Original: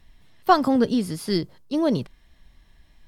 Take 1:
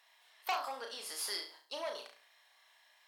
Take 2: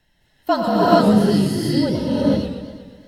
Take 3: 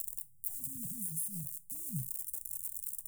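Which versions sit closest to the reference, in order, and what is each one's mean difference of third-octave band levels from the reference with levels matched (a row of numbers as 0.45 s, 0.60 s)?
2, 1, 3; 10.0 dB, 14.5 dB, 20.0 dB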